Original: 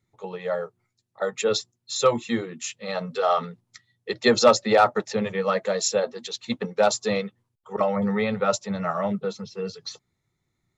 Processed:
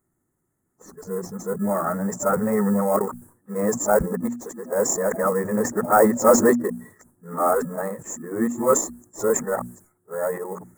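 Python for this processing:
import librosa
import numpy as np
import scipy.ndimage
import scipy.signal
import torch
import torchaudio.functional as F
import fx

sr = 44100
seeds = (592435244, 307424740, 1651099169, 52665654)

p1 = np.flip(x).copy()
p2 = fx.vibrato(p1, sr, rate_hz=2.0, depth_cents=5.3)
p3 = fx.sample_hold(p2, sr, seeds[0], rate_hz=1500.0, jitter_pct=0)
p4 = p2 + (p3 * librosa.db_to_amplitude(-11.5))
p5 = fx.hum_notches(p4, sr, base_hz=60, count=4)
p6 = fx.transient(p5, sr, attack_db=-3, sustain_db=2)
p7 = fx.curve_eq(p6, sr, hz=(130.0, 280.0, 480.0, 1700.0, 2700.0, 4000.0, 8100.0), db=(0, 10, 5, 6, -27, -29, 15))
p8 = fx.sustainer(p7, sr, db_per_s=120.0)
y = p8 * librosa.db_to_amplitude(-3.5)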